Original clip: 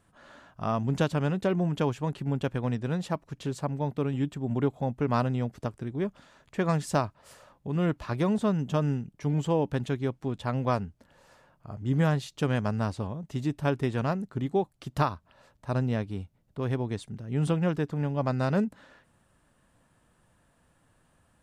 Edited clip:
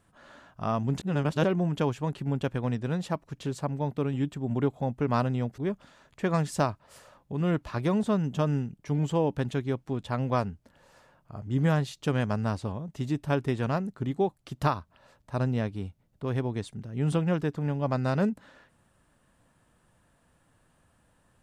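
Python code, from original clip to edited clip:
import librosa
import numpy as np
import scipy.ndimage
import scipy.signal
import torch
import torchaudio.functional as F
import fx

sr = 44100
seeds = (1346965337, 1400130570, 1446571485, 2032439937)

y = fx.edit(x, sr, fx.reverse_span(start_s=1.0, length_s=0.44),
    fx.cut(start_s=5.58, length_s=0.35), tone=tone)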